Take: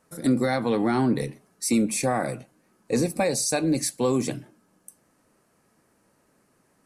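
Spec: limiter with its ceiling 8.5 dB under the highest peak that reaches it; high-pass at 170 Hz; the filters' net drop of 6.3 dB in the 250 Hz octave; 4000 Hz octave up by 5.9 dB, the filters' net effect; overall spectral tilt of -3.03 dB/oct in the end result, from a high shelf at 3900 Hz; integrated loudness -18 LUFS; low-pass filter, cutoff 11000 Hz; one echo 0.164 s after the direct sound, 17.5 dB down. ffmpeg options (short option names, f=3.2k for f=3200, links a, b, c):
-af "highpass=170,lowpass=11k,equalizer=f=250:t=o:g=-6.5,highshelf=f=3.9k:g=4,equalizer=f=4k:t=o:g=4.5,alimiter=limit=-17.5dB:level=0:latency=1,aecho=1:1:164:0.133,volume=10dB"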